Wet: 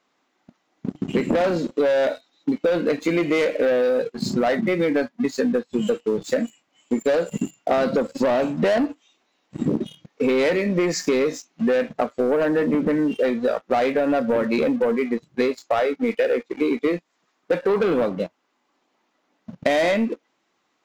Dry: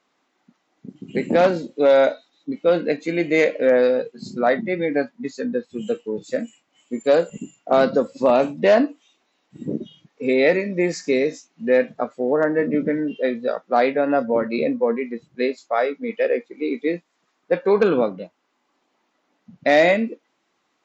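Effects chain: waveshaping leveller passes 2; compression, threshold -22 dBFS, peak gain reduction 11.5 dB; trim +3.5 dB

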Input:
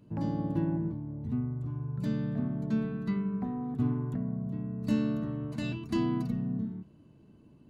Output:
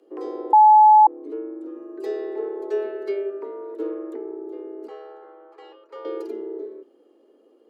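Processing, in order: 1.76–3.30 s: comb 4.6 ms, depth 78%; 4.87–6.05 s: band-pass filter 820 Hz, Q 1.4; frequency shift +200 Hz; 0.53–1.07 s: bleep 856 Hz -8 dBFS

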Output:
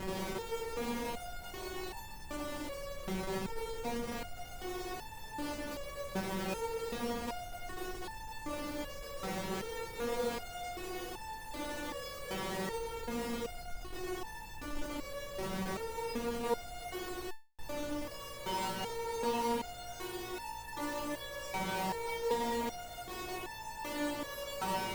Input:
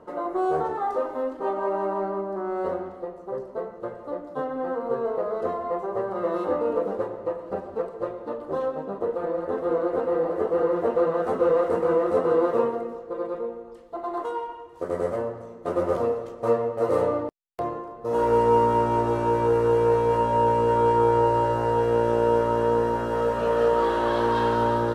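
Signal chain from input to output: spectral levelling over time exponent 0.2; dynamic bell 440 Hz, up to -5 dB, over -29 dBFS, Q 1.3; Schmitt trigger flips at -18.5 dBFS; spectral noise reduction 8 dB; resonator arpeggio 2.6 Hz 190–880 Hz; trim +4 dB

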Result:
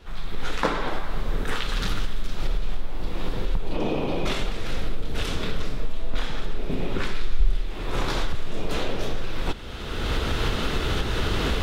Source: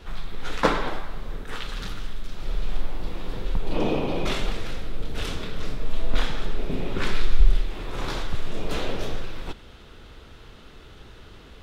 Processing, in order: recorder AGC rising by 25 dB/s; trim -4 dB

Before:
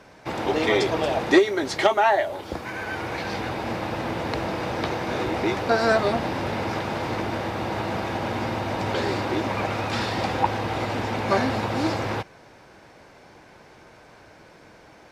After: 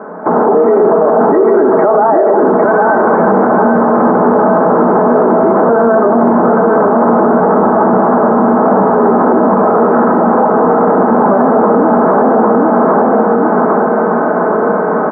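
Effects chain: on a send at -7 dB: reverberation RT60 0.80 s, pre-delay 3 ms; on the sum: compression, threshold -27 dBFS, peak gain reduction 15 dB; in parallel at -7.5 dB: word length cut 6-bit, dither triangular; on the sum: steep low-pass 1.4 kHz 48 dB/octave; feedback delay 803 ms, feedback 35%, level -5 dB; level rider gain up to 13.5 dB; Chebyshev high-pass 190 Hz, order 4; comb 4.7 ms, depth 36%; loudness maximiser +20 dB; trim -1 dB

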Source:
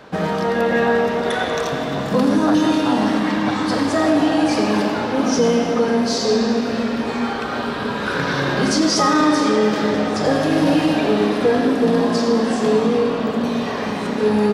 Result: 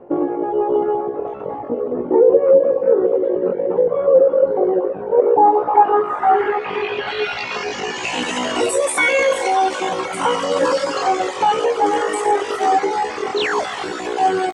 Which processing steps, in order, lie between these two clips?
reverb removal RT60 1.4 s; reverse; upward compressor, threshold -26 dBFS; reverse; low-pass sweep 280 Hz -> 5.1 kHz, 5.07–8.25 s; painted sound fall, 13.39–13.66 s, 290–2500 Hz -22 dBFS; pitch shift +10 st; distance through air 81 m; doubling 17 ms -11 dB; trim +1.5 dB

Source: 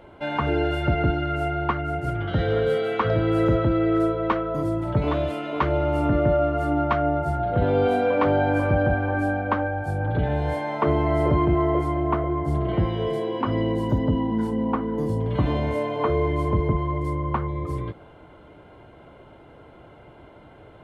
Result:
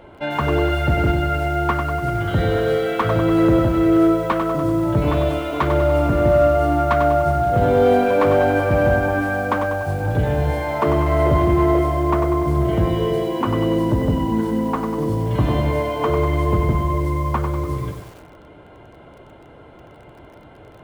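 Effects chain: in parallel at -10.5 dB: wavefolder -18.5 dBFS; on the sum: bit-crushed delay 97 ms, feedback 55%, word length 7-bit, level -6.5 dB; trim +1.5 dB

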